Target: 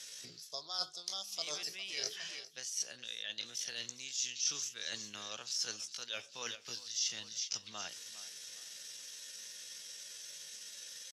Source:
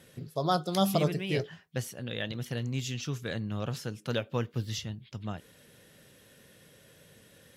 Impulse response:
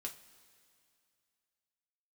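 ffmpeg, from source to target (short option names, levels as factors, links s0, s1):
-filter_complex "[0:a]acrossover=split=260|3000[s0][s1][s2];[s0]acompressor=threshold=0.0126:ratio=8[s3];[s3][s1][s2]amix=inputs=3:normalize=0,aderivative,atempo=0.68,asplit=2[s4][s5];[s5]aecho=0:1:408|816|1224:0.126|0.0478|0.0182[s6];[s4][s6]amix=inputs=2:normalize=0,areverse,acompressor=threshold=0.002:ratio=12,areverse,lowpass=f=5800:t=q:w=3.5,volume=4.73"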